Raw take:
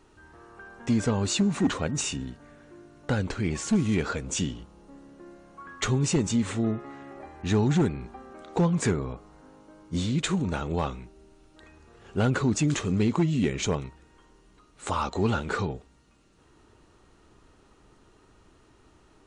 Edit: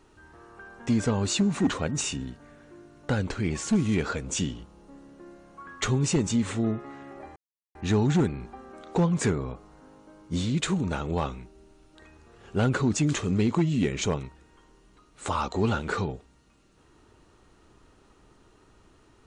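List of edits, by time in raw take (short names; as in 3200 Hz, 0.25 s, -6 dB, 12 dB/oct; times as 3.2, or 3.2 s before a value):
7.36 insert silence 0.39 s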